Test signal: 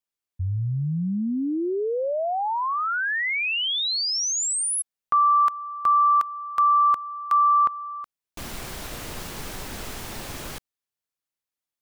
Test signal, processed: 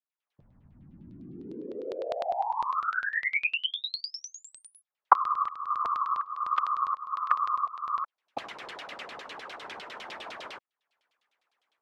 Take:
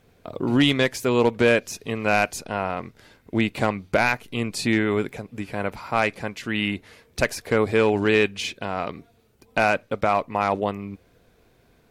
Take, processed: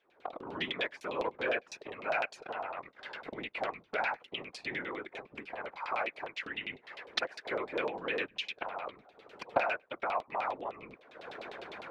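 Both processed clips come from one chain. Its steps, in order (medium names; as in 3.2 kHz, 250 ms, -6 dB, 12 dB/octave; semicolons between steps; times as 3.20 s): recorder AGC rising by 62 dB/s, up to +31 dB; high-pass 460 Hz 12 dB/octave; treble shelf 7.3 kHz +6 dB; whisper effect; LFO low-pass saw down 9.9 Hz 660–4000 Hz; trim -14.5 dB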